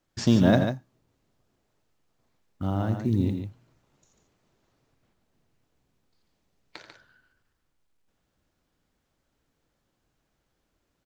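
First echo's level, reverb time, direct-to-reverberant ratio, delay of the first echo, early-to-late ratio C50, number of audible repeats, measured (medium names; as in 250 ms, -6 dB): -11.5 dB, no reverb, no reverb, 85 ms, no reverb, 2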